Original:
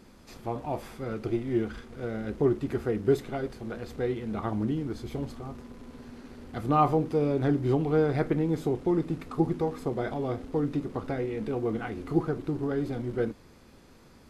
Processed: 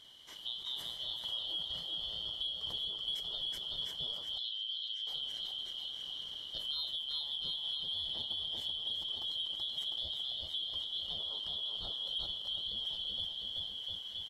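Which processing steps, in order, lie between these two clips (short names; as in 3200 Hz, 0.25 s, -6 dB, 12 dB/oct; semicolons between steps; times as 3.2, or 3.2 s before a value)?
four-band scrambler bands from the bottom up 2413; on a send: bouncing-ball echo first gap 0.38 s, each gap 0.85×, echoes 5; on the sum: dynamic EQ 3200 Hz, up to -4 dB, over -35 dBFS, Q 1.2; in parallel at -10 dB: soft clip -23 dBFS, distortion -15 dB; on the sum: compressor, threshold -30 dBFS, peak gain reduction 10.5 dB; 4.38–5.07 band-pass 3600 Hz, Q 1.2; sustainer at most 54 dB/s; gain -6 dB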